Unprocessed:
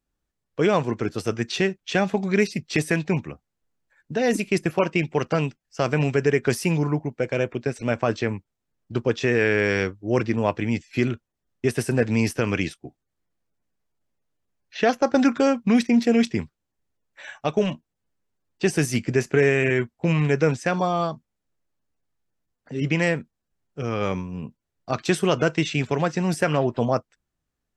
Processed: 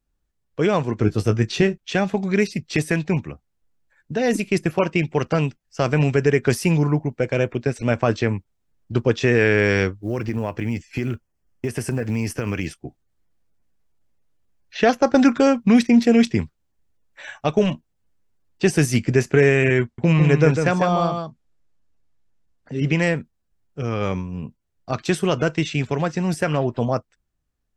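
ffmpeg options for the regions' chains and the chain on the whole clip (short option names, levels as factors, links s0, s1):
-filter_complex "[0:a]asettb=1/sr,asplit=3[s0][s1][s2];[s0]atrim=end=0.994[s3];[s1]atrim=start=0.99:end=1.78,asetpts=PTS-STARTPTS,afade=t=in:d=0.004:c=qsin,afade=t=out:st=0.786:d=0.004:c=qsin,lowshelf=f=360:g=7,asplit=2[s4][s5];[s5]adelay=19,volume=0.355[s6];[s4][s6]amix=inputs=2:normalize=0,atrim=end_sample=34839[s7];[s2]atrim=start=1.776[s8];[s3][s7]acrossfade=d=0.004:c1=hsin:c2=qsin[s9];[s9][s8]acrossfade=d=0.004:c1=qsin:c2=hsin,asettb=1/sr,asplit=3[s10][s11][s12];[s10]atrim=end=10.014[s13];[s11]atrim=start=10.01:end=12.78,asetpts=PTS-STARTPTS,afade=t=in:d=0.004:c=qsin,afade=t=out:st=2.766:d=0.004:c=qsin,equalizer=f=3800:w=6.7:g=-12.5,acompressor=threshold=0.0562:ratio=4:attack=3.2:release=140:knee=1:detection=peak,acrusher=bits=9:mode=log:mix=0:aa=0.000001[s14];[s12]atrim=start=12.776[s15];[s13][s14]acrossfade=d=0.004:c1=hsin:c2=qsin[s16];[s16][s15]acrossfade=d=0.004:c1=qsin:c2=hsin,asettb=1/sr,asplit=3[s17][s18][s19];[s17]atrim=end=19.834[s20];[s18]atrim=start=19.83:end=22.93,asetpts=PTS-STARTPTS,afade=t=in:d=0.004:c=qsin,afade=t=out:st=3.096:d=0.004:c=qsin,lowpass=9200,aecho=1:1:151:0.501,atrim=end_sample=136710[s21];[s19]atrim=start=22.926[s22];[s20][s21]acrossfade=d=0.004:c1=hsin:c2=qsin[s23];[s23][s22]acrossfade=d=0.004:c1=qsin:c2=hsin,lowshelf=f=94:g=9.5,dynaudnorm=f=350:g=31:m=1.68"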